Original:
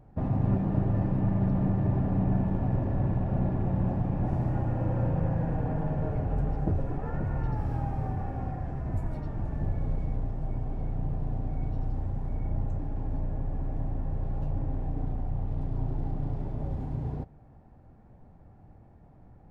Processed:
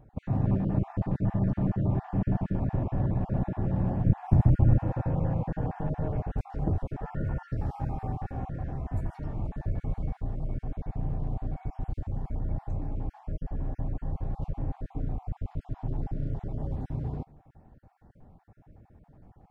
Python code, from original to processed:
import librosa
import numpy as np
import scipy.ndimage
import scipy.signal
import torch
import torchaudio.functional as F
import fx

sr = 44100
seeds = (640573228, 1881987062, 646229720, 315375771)

y = fx.spec_dropout(x, sr, seeds[0], share_pct=26)
y = fx.low_shelf(y, sr, hz=230.0, db=11.5, at=(4.06, 4.79))